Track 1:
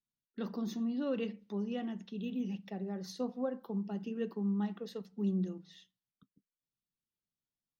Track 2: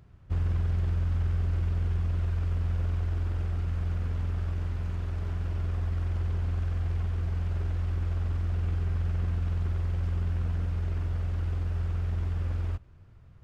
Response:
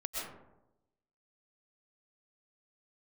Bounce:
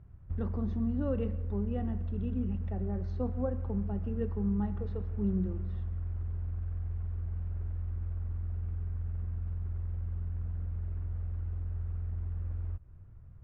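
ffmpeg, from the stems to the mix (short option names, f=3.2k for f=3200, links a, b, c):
-filter_complex "[0:a]lowpass=1.4k,volume=0.5dB,asplit=2[a][b];[b]volume=-16dB[c];[1:a]acompressor=threshold=-35dB:ratio=6,lowpass=1.8k,lowshelf=f=150:g=11,volume=-6.5dB[d];[2:a]atrim=start_sample=2205[e];[c][e]afir=irnorm=-1:irlink=0[f];[a][d][f]amix=inputs=3:normalize=0"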